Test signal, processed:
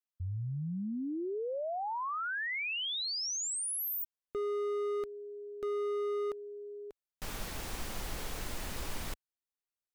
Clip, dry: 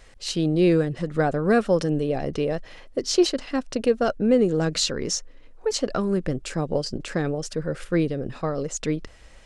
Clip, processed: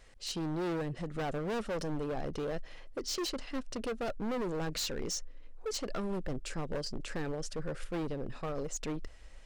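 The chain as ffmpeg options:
-af "asoftclip=type=hard:threshold=-24dB,asubboost=boost=2:cutoff=62,volume=-8dB"

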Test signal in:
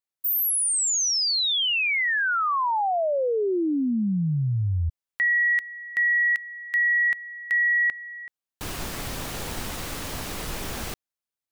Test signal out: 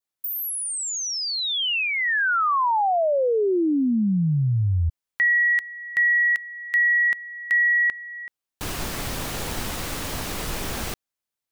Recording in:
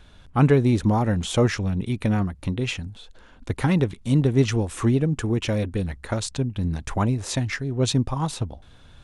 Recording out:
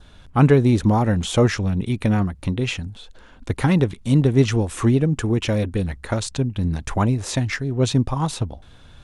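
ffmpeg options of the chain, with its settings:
-filter_complex "[0:a]adynamicequalizer=threshold=0.0112:dfrequency=2300:dqfactor=3.1:tfrequency=2300:tqfactor=3.1:attack=5:release=100:ratio=0.375:range=3:mode=cutabove:tftype=bell,acrossover=split=2600[a][b];[b]acompressor=threshold=-34dB:ratio=6:attack=37:release=22:knee=1:detection=rms[c];[a][c]amix=inputs=2:normalize=0,volume=3dB"

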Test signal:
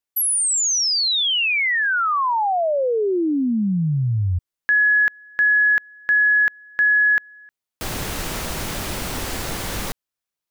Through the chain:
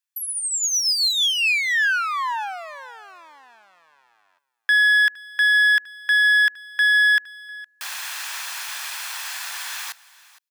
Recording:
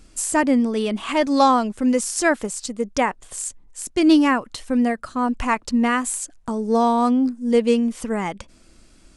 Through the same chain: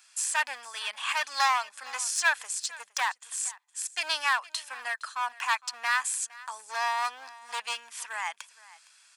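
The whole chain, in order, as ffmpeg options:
-filter_complex "[0:a]acrossover=split=6600[a][b];[b]acompressor=threshold=-32dB:ratio=4:attack=1:release=60[c];[a][c]amix=inputs=2:normalize=0,aeval=exprs='clip(val(0),-1,0.0944)':c=same,highpass=f=1.1k:w=0.5412,highpass=f=1.1k:w=1.3066,aecho=1:1:1.2:0.32,aecho=1:1:463:0.1"

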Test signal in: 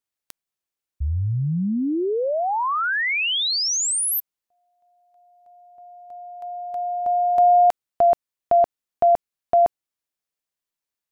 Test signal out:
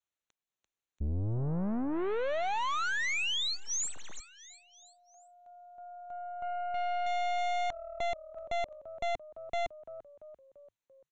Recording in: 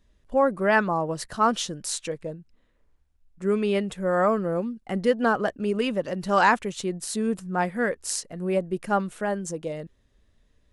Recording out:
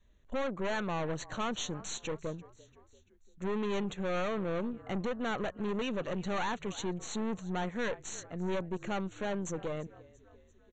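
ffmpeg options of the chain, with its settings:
-filter_complex "[0:a]adynamicequalizer=threshold=0.00794:dfrequency=280:dqfactor=3.2:tfrequency=280:tqfactor=3.2:attack=5:release=100:ratio=0.375:range=2.5:mode=cutabove:tftype=bell,alimiter=limit=-15.5dB:level=0:latency=1:release=256,asplit=5[a][b][c][d][e];[b]adelay=341,afreqshift=-38,volume=-23dB[f];[c]adelay=682,afreqshift=-76,volume=-28dB[g];[d]adelay=1023,afreqshift=-114,volume=-33.1dB[h];[e]adelay=1364,afreqshift=-152,volume=-38.1dB[i];[a][f][g][h][i]amix=inputs=5:normalize=0,aeval=exprs='(tanh(35.5*val(0)+0.6)-tanh(0.6))/35.5':c=same,aresample=16000,aresample=44100,asuperstop=centerf=5000:order=8:qfactor=3.5"

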